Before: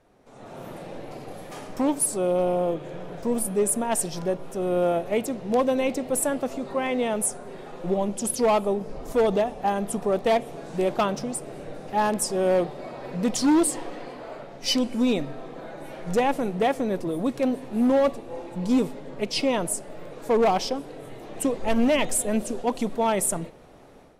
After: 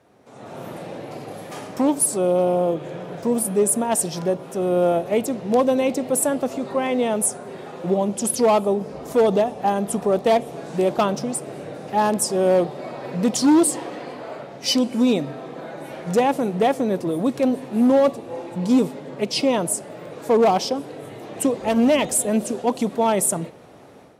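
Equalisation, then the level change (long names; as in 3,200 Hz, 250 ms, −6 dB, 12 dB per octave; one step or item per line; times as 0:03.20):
high-pass filter 79 Hz 24 dB per octave
dynamic equaliser 2,000 Hz, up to −4 dB, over −38 dBFS, Q 1
+4.5 dB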